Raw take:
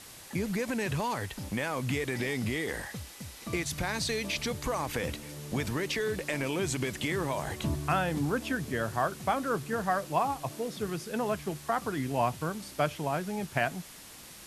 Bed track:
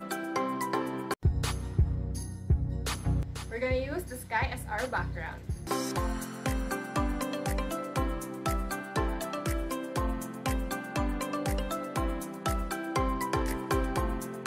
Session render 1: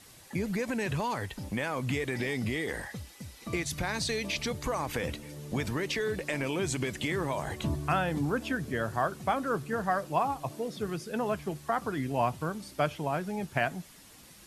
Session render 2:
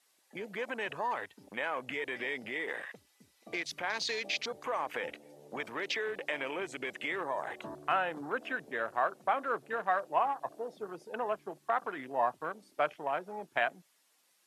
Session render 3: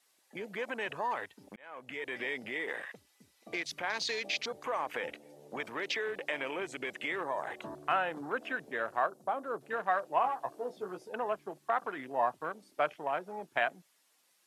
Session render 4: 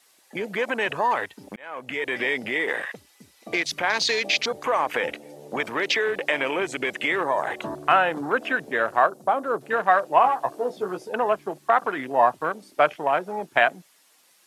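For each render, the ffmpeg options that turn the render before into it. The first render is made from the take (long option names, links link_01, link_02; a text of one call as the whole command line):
ffmpeg -i in.wav -af "afftdn=noise_reduction=7:noise_floor=-49" out.wav
ffmpeg -i in.wav -af "afwtdn=0.01,highpass=530" out.wav
ffmpeg -i in.wav -filter_complex "[0:a]asettb=1/sr,asplit=3[link_01][link_02][link_03];[link_01]atrim=end=9.064[link_04];[link_02]atrim=start=9.06:end=9.61,asetpts=PTS-STARTPTS,afade=type=in:duration=0.004:curve=qsin,afade=type=out:start_time=0.546:duration=0.004:curve=qsin,equalizer=frequency=2200:width_type=o:width=1.6:gain=-13.5[link_05];[link_03]atrim=start=9.606[link_06];[link_04][link_05]acrossfade=duration=0.004:curve1=hsin:curve2=qsin[link_07];[link_07][link_06]acrossfade=duration=0.004:curve1=qsin:curve2=hsin,asettb=1/sr,asplit=3[link_08][link_09][link_10];[link_08]atrim=end=10.224[link_11];[link_09]atrim=start=10.22:end=11.09,asetpts=PTS-STARTPTS,afade=type=in:duration=0.004:curve=qsin,afade=type=out:start_time=0.866:duration=0.004:curve=qsin,asplit=2[link_12][link_13];[link_13]adelay=16,volume=-5dB[link_14];[link_12][link_14]amix=inputs=2:normalize=0,atrim=end_sample=38367[link_15];[link_10]atrim=start=11.086[link_16];[link_11][link_15]acrossfade=duration=0.004:curve1=hsin:curve2=qsin[link_17];[link_17][link_16]acrossfade=duration=0.004:curve1=qsin:curve2=hsin,asplit=2[link_18][link_19];[link_18]atrim=end=1.56,asetpts=PTS-STARTPTS,afade=type=out:start_time=1.556:duration=0.004:curve=hsin[link_20];[link_19]atrim=start=1.56,asetpts=PTS-STARTPTS,afade=type=in:duration=0.63[link_21];[link_20][link_21]concat=n=2:v=0:a=1" out.wav
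ffmpeg -i in.wav -af "volume=11.5dB" out.wav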